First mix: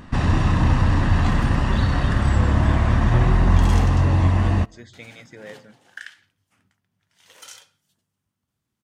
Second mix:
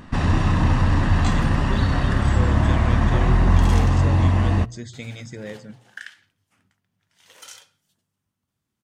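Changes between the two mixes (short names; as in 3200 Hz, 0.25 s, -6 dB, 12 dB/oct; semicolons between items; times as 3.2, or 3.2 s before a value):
speech: remove band-pass 1200 Hz, Q 0.58; master: add notches 60/120 Hz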